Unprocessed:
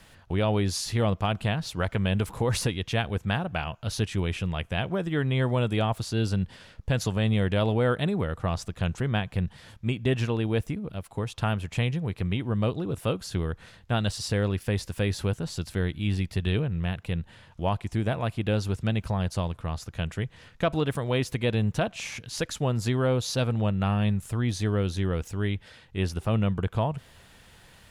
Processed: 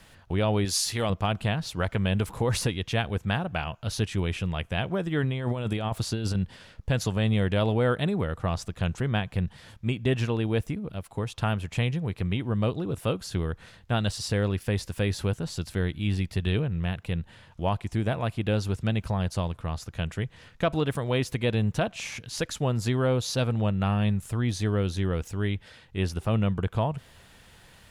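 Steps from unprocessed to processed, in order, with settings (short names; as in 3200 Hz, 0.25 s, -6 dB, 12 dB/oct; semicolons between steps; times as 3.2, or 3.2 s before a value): 0.65–1.1 tilt +2 dB/oct; 5.23–6.35 negative-ratio compressor -27 dBFS, ratio -0.5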